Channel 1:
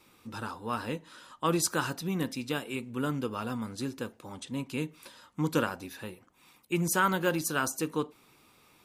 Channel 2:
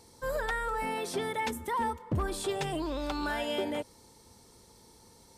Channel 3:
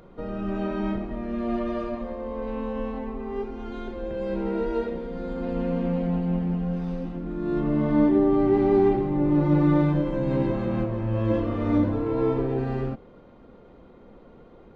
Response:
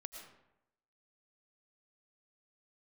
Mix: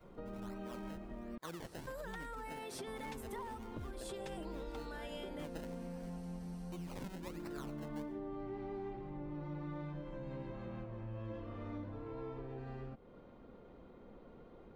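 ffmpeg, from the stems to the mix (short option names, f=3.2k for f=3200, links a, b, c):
-filter_complex "[0:a]acrusher=samples=26:mix=1:aa=0.000001:lfo=1:lforange=26:lforate=1.3,volume=-13.5dB,asplit=2[a][b];[b]volume=-4.5dB[c];[1:a]asubboost=boost=4.5:cutoff=76,acompressor=threshold=-34dB:ratio=6,adelay=1650,volume=0.5dB[d];[2:a]adynamicequalizer=threshold=0.0251:dfrequency=290:dqfactor=0.73:tfrequency=290:tqfactor=0.73:attack=5:release=100:ratio=0.375:range=3.5:mode=cutabove:tftype=bell,volume=-7dB,asplit=3[e][f][g];[e]atrim=end=1.38,asetpts=PTS-STARTPTS,afade=t=out:st=1.376:d=0.004:c=hsin[h];[f]atrim=start=1.38:end=2.87,asetpts=PTS-STARTPTS,volume=0[i];[g]atrim=start=2.87,asetpts=PTS-STARTPTS,afade=t=in:d=0.004:c=hsin[j];[h][i][j]concat=n=3:v=0:a=1[k];[3:a]atrim=start_sample=2205[l];[c][l]afir=irnorm=-1:irlink=0[m];[a][d][k][m]amix=inputs=4:normalize=0,acompressor=threshold=-47dB:ratio=2.5"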